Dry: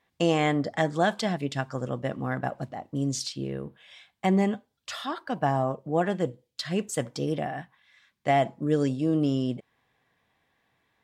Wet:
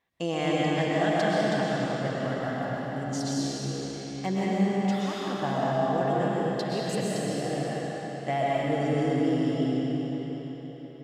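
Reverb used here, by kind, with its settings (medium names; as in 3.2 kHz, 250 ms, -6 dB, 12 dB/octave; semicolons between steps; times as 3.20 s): algorithmic reverb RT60 4.8 s, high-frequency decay 0.9×, pre-delay 85 ms, DRR -7 dB; trim -7 dB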